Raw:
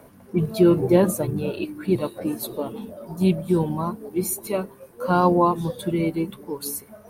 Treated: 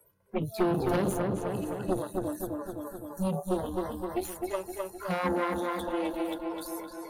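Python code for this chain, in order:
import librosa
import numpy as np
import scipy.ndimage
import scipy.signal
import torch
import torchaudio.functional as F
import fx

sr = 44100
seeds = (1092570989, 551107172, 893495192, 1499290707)

p1 = fx.spec_box(x, sr, start_s=1.33, length_s=2.18, low_hz=1800.0, high_hz=5600.0, gain_db=-10)
p2 = p1 + fx.echo_diffused(p1, sr, ms=488, feedback_pct=48, wet_db=-16, dry=0)
p3 = fx.transient(p2, sr, attack_db=1, sustain_db=7)
p4 = fx.env_flanger(p3, sr, rest_ms=2.2, full_db=-19.5)
p5 = fx.cheby_harmonics(p4, sr, harmonics=(6,), levels_db=(-12,), full_scale_db=-4.5)
p6 = fx.noise_reduce_blind(p5, sr, reduce_db=30)
p7 = fx.echo_filtered(p6, sr, ms=257, feedback_pct=44, hz=4000.0, wet_db=-5)
p8 = fx.band_squash(p7, sr, depth_pct=70)
y = F.gain(torch.from_numpy(p8), -9.0).numpy()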